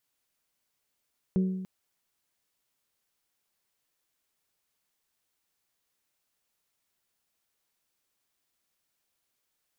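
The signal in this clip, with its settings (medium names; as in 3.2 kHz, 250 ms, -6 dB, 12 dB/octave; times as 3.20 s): glass hit bell, length 0.29 s, lowest mode 187 Hz, modes 4, decay 1.12 s, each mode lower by 9.5 dB, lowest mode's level -20.5 dB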